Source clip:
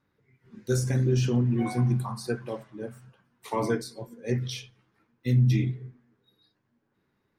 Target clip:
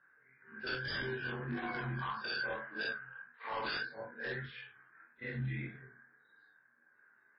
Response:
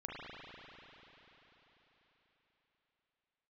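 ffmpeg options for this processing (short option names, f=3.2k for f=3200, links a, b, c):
-af "afftfilt=real='re':imag='-im':win_size=4096:overlap=0.75,highpass=f=1.1k:p=1,alimiter=level_in=14dB:limit=-24dB:level=0:latency=1:release=166,volume=-14dB,lowpass=f=1.6k:t=q:w=14,aeval=exprs='0.0119*(abs(mod(val(0)/0.0119+3,4)-2)-1)':c=same,flanger=delay=17.5:depth=6.3:speed=1.7,tremolo=f=71:d=0.261,volume=10.5dB" -ar 12000 -c:a libmp3lame -b:a 16k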